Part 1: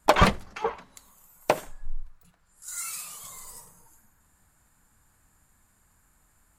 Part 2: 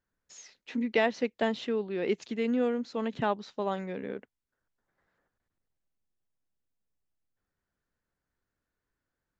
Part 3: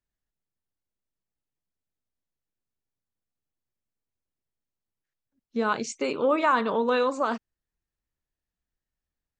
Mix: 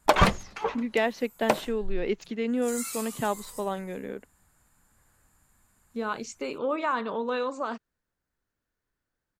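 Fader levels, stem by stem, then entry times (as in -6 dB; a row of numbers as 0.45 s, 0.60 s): -1.0 dB, +0.5 dB, -5.5 dB; 0.00 s, 0.00 s, 0.40 s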